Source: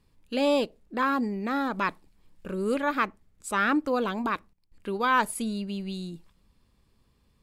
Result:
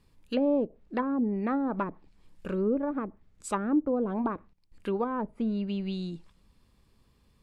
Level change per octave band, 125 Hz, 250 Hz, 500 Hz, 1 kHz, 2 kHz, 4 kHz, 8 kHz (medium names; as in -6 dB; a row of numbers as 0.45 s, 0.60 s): +1.5 dB, +1.0 dB, -1.0 dB, -8.0 dB, -14.5 dB, under -10 dB, -8.0 dB